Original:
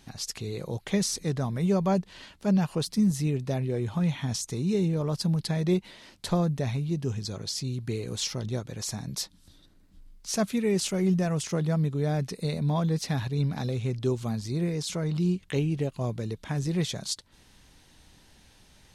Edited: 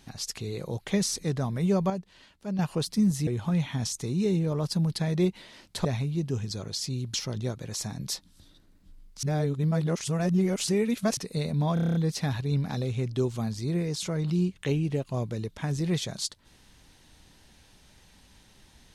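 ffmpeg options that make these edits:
-filter_complex "[0:a]asplit=15[s0][s1][s2][s3][s4][s5][s6][s7][s8][s9][s10][s11][s12][s13][s14];[s0]atrim=end=1.902[s15];[s1]atrim=start=1.898:end=2.592,asetpts=PTS-STARTPTS,volume=0.376[s16];[s2]atrim=start=2.588:end=3.272[s17];[s3]atrim=start=3.758:end=6.342[s18];[s4]atrim=start=6.588:end=7.882[s19];[s5]atrim=start=8.218:end=10.312[s20];[s6]atrim=start=10.308:end=12.252,asetpts=PTS-STARTPTS,areverse[s21];[s7]atrim=start=12.248:end=12.852[s22];[s8]atrim=start=12.818:end=12.852[s23];[s9]atrim=start=12.818:end=12.852[s24];[s10]atrim=start=12.818:end=12.852[s25];[s11]atrim=start=12.818:end=12.852[s26];[s12]atrim=start=12.818:end=12.852[s27];[s13]atrim=start=12.818:end=12.852[s28];[s14]atrim=start=12.818[s29];[s15][s16]acrossfade=d=0.004:c1=hsin:c2=hsin[s30];[s30][s17]acrossfade=d=0.004:c1=hsin:c2=hsin[s31];[s31][s18]acrossfade=d=0.004:c1=hsin:c2=hsin[s32];[s32][s19]acrossfade=d=0.004:c1=hsin:c2=hsin[s33];[s33][s20]acrossfade=d=0.004:c1=hsin:c2=hsin[s34];[s34][s21]acrossfade=d=0.004:c1=hsin:c2=hsin[s35];[s35][s22]acrossfade=d=0.004:c1=hsin:c2=hsin[s36];[s36][s23]acrossfade=d=0.004:c1=hsin:c2=hsin[s37];[s37][s24]acrossfade=d=0.004:c1=hsin:c2=hsin[s38];[s38][s25]acrossfade=d=0.004:c1=hsin:c2=hsin[s39];[s39][s26]acrossfade=d=0.004:c1=hsin:c2=hsin[s40];[s40][s27]acrossfade=d=0.004:c1=hsin:c2=hsin[s41];[s41][s28]acrossfade=d=0.004:c1=hsin:c2=hsin[s42];[s42][s29]acrossfade=d=0.004:c1=hsin:c2=hsin"

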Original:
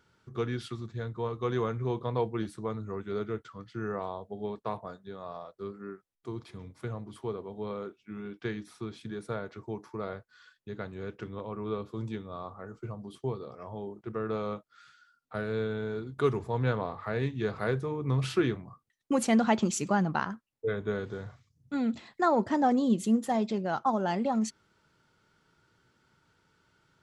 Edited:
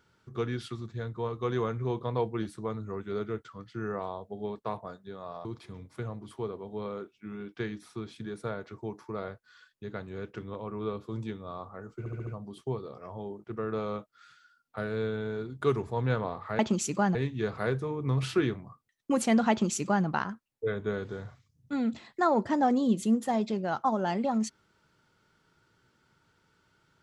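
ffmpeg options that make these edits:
-filter_complex "[0:a]asplit=8[s0][s1][s2][s3][s4][s5][s6][s7];[s0]atrim=end=5.452[s8];[s1]atrim=start=6.298:end=12.912[s9];[s2]atrim=start=12.838:end=12.912[s10];[s3]atrim=start=12.838:end=12.912[s11];[s4]atrim=start=12.838:end=12.912[s12];[s5]atrim=start=12.838:end=17.162[s13];[s6]atrim=start=19.508:end=20.072[s14];[s7]atrim=start=17.158[s15];[s8][s9]acrossfade=d=0.004:c1=hsin:c2=hsin[s16];[s16][s10]acrossfade=d=0.004:c1=hsin:c2=hsin[s17];[s17][s11]acrossfade=d=0.004:c1=hsin:c2=hsin[s18];[s18][s12]acrossfade=d=0.004:c1=hsin:c2=hsin[s19];[s19][s13]acrossfade=d=0.004:c1=hsin:c2=hsin[s20];[s20][s14]acrossfade=d=0.004:c1=hsin:c2=hsin[s21];[s21][s15]acrossfade=d=0.004:c1=hsin:c2=hsin"

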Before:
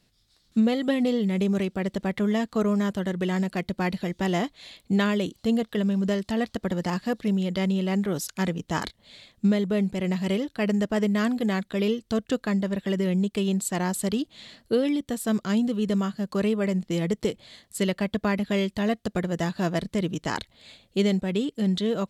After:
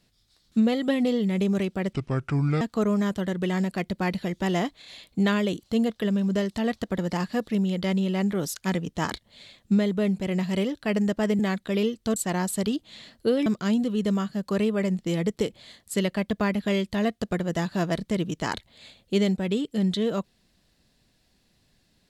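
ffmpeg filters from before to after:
-filter_complex "[0:a]asplit=8[s0][s1][s2][s3][s4][s5][s6][s7];[s0]atrim=end=1.934[s8];[s1]atrim=start=1.93:end=2.4,asetpts=PTS-STARTPTS,asetrate=30429,aresample=44100,atrim=end_sample=30039,asetpts=PTS-STARTPTS[s9];[s2]atrim=start=2.396:end=4.612[s10];[s3]atrim=start=4.578:end=4.612[s11];[s4]atrim=start=4.578:end=11.122[s12];[s5]atrim=start=11.438:end=12.212[s13];[s6]atrim=start=13.618:end=14.922[s14];[s7]atrim=start=15.298[s15];[s8][s9]acrossfade=d=0.004:c1=hsin:c2=hsin[s16];[s16][s10]acrossfade=d=0.004:c1=hsin:c2=hsin[s17];[s17][s11]acrossfade=d=0.004:c1=hsin:c2=hsin[s18];[s18][s12]acrossfade=d=0.004:c1=hsin:c2=hsin[s19];[s19][s13]acrossfade=d=0.004:c1=hsin:c2=hsin[s20];[s20][s14]acrossfade=d=0.004:c1=hsin:c2=hsin[s21];[s21][s15]acrossfade=d=0.004:c1=hsin:c2=hsin"

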